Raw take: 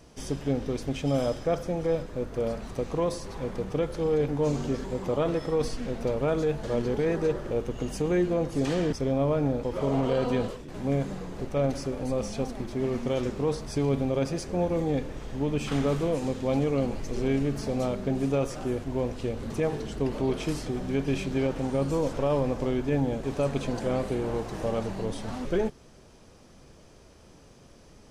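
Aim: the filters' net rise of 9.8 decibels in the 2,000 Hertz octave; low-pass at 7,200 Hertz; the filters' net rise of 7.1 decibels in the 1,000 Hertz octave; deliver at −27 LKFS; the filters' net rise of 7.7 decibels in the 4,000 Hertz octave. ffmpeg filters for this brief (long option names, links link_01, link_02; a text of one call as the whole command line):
ffmpeg -i in.wav -af "lowpass=7200,equalizer=frequency=1000:width_type=o:gain=7,equalizer=frequency=2000:width_type=o:gain=8.5,equalizer=frequency=4000:width_type=o:gain=7" out.wav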